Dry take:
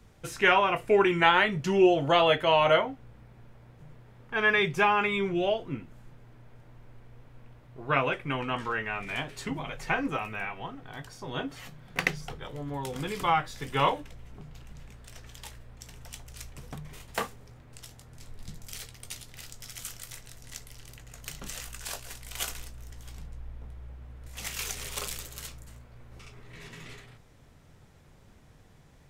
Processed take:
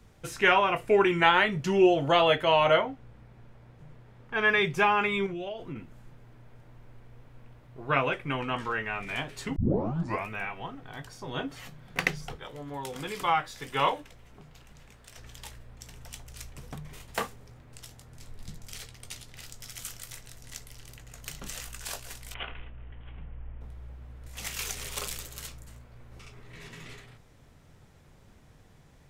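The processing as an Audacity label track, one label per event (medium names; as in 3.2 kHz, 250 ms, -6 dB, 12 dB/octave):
2.670000	4.450000	treble shelf 9.5 kHz -6.5 dB
5.260000	5.760000	compression 12:1, threshold -32 dBFS
9.560000	9.560000	tape start 0.72 s
12.360000	15.180000	bass shelf 240 Hz -8.5 dB
18.560000	19.440000	treble shelf 11 kHz -7.5 dB
22.340000	23.610000	steep low-pass 3.2 kHz 72 dB/octave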